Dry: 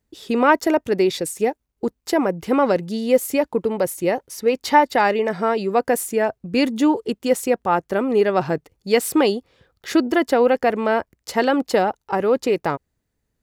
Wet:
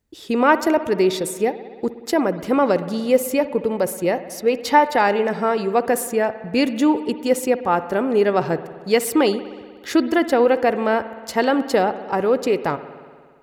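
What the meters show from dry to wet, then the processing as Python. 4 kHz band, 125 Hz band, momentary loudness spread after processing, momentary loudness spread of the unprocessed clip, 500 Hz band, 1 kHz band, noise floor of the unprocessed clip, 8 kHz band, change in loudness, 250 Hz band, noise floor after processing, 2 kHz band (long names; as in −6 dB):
0.0 dB, +0.5 dB, 7 LU, 7 LU, +0.5 dB, +0.5 dB, −75 dBFS, 0.0 dB, +0.5 dB, +0.5 dB, −43 dBFS, 0.0 dB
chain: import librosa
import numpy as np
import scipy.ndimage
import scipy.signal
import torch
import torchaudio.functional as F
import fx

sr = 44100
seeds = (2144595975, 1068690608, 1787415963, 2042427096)

y = fx.rev_spring(x, sr, rt60_s=1.8, pass_ms=(59,), chirp_ms=40, drr_db=12.5)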